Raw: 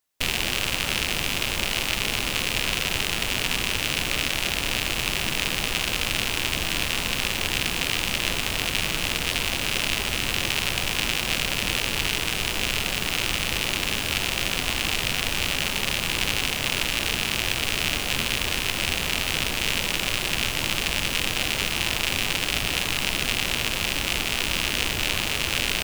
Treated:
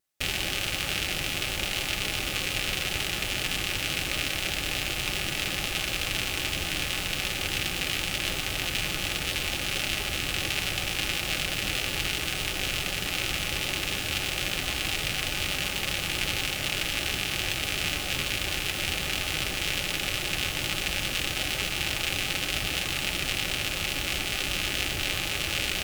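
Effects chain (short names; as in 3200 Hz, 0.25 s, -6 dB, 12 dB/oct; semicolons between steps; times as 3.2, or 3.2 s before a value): vibrato 8 Hz 71 cents; Butterworth band-stop 1000 Hz, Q 7.8; notch comb 230 Hz; gain -2.5 dB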